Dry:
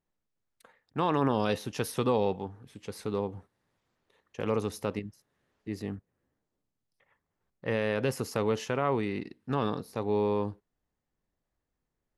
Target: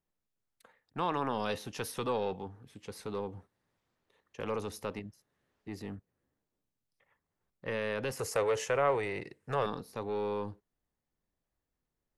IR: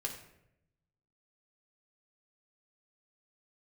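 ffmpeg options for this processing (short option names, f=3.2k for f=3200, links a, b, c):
-filter_complex "[0:a]asettb=1/sr,asplit=3[a][b][c];[a]atrim=end=8.194[d];[b]atrim=start=8.19:end=9.66,asetpts=PTS-STARTPTS,afade=t=in:d=0.004:c=qsin,afade=t=out:st=1.466:d=0.004:c=qsin,equalizer=f=125:t=o:w=1:g=6,equalizer=f=250:t=o:w=1:g=-11,equalizer=f=500:t=o:w=1:g=11,equalizer=f=2k:t=o:w=1:g=6,equalizer=f=4k:t=o:w=1:g=-4,equalizer=f=8k:t=o:w=1:g=11[e];[c]atrim=start=9.656[f];[d][e]acrossfade=d=0.004:c1=hsin:c2=qsin[g];[g][f]acrossfade=d=0.004:c1=qsin:c2=hsin,acrossover=split=510|3200[h][i][j];[h]asoftclip=type=tanh:threshold=-32.5dB[k];[k][i][j]amix=inputs=3:normalize=0,volume=-3dB"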